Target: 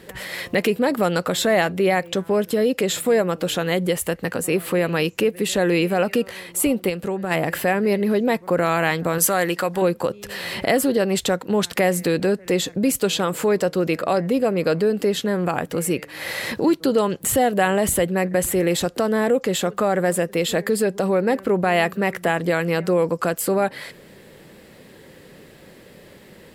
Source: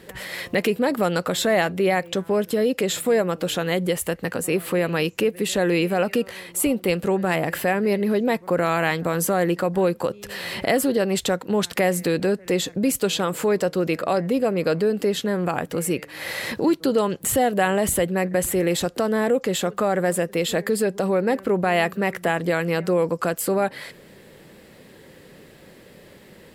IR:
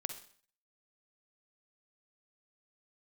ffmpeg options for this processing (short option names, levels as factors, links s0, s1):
-filter_complex "[0:a]asplit=3[s0][s1][s2];[s0]afade=t=out:st=6.88:d=0.02[s3];[s1]acompressor=threshold=0.0398:ratio=2,afade=t=in:st=6.88:d=0.02,afade=t=out:st=7.3:d=0.02[s4];[s2]afade=t=in:st=7.3:d=0.02[s5];[s3][s4][s5]amix=inputs=3:normalize=0,asettb=1/sr,asplit=3[s6][s7][s8];[s6]atrim=end=9.184[s9];[s7]atrim=start=9.18:end=9.82,asetpts=PTS-STARTPTS,afade=t=in:d=0.004:c=qsin,afade=t=out:st=0.636:d=0.004:c=qsin,tiltshelf=f=770:g=-6[s10];[s8]atrim=start=9.816[s11];[s9][s10]acrossfade=d=0.004:c1=hsin:c2=qsin[s12];[s12][s11]acrossfade=d=0.004:c1=qsin:c2=hsin,volume=1.19"